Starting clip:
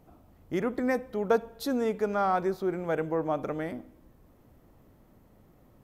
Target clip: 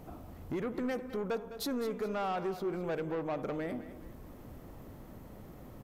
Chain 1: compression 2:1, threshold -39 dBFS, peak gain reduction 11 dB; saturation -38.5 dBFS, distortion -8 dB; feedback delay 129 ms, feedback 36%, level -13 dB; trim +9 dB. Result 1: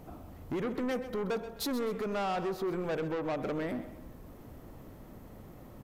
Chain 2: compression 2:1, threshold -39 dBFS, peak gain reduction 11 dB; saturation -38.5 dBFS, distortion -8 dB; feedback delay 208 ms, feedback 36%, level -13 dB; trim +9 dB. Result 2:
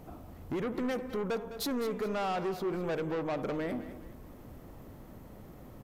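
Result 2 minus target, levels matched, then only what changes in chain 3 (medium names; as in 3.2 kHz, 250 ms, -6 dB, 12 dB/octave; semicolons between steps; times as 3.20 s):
compression: peak gain reduction -4 dB
change: compression 2:1, threshold -47.5 dBFS, peak gain reduction 15.5 dB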